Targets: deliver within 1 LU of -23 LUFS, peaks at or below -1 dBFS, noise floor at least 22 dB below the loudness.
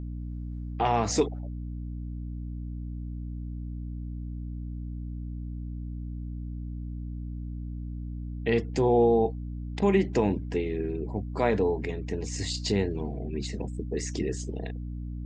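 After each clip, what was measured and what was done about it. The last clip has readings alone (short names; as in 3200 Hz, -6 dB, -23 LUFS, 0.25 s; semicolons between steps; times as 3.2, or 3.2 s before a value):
hum 60 Hz; harmonics up to 300 Hz; hum level -33 dBFS; loudness -30.5 LUFS; peak -11.0 dBFS; loudness target -23.0 LUFS
-> notches 60/120/180/240/300 Hz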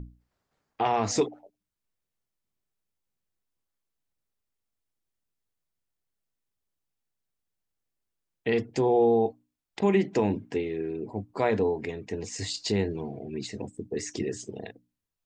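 hum none; loudness -28.5 LUFS; peak -12.0 dBFS; loudness target -23.0 LUFS
-> gain +5.5 dB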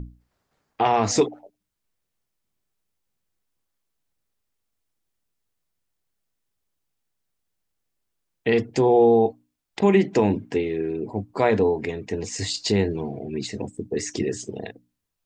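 loudness -23.0 LUFS; peak -6.5 dBFS; noise floor -80 dBFS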